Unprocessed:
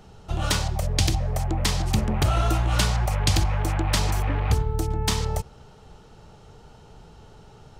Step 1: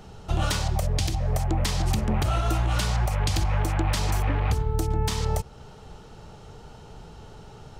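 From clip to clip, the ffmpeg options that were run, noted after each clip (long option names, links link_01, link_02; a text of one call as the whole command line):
ffmpeg -i in.wav -af "alimiter=limit=-18dB:level=0:latency=1:release=298,volume=3.5dB" out.wav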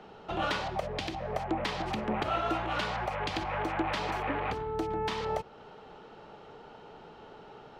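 ffmpeg -i in.wav -filter_complex "[0:a]acrossover=split=220 3700:gain=0.0891 1 0.0631[link_01][link_02][link_03];[link_01][link_02][link_03]amix=inputs=3:normalize=0" out.wav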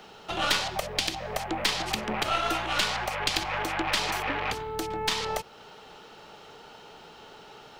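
ffmpeg -i in.wav -af "crystalizer=i=7.5:c=0,aeval=exprs='0.398*(cos(1*acos(clip(val(0)/0.398,-1,1)))-cos(1*PI/2))+0.112*(cos(2*acos(clip(val(0)/0.398,-1,1)))-cos(2*PI/2))+0.0708*(cos(3*acos(clip(val(0)/0.398,-1,1)))-cos(3*PI/2))':channel_layout=same,asoftclip=type=tanh:threshold=-15.5dB,volume=5dB" out.wav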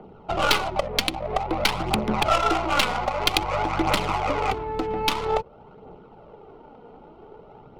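ffmpeg -i in.wav -af "asuperstop=centerf=1700:order=8:qfactor=3.7,adynamicsmooth=sensitivity=2:basefreq=580,aphaser=in_gain=1:out_gain=1:delay=4.3:decay=0.4:speed=0.51:type=triangular,volume=7dB" out.wav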